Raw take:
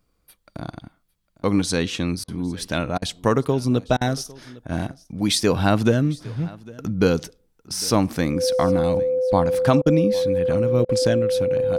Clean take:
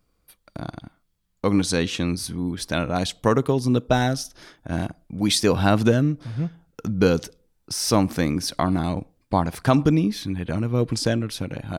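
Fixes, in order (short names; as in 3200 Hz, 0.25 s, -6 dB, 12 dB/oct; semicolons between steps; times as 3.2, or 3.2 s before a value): notch 510 Hz, Q 30; interpolate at 2.24/2.98/3.97/9.82/10.85, 40 ms; inverse comb 0.804 s -22 dB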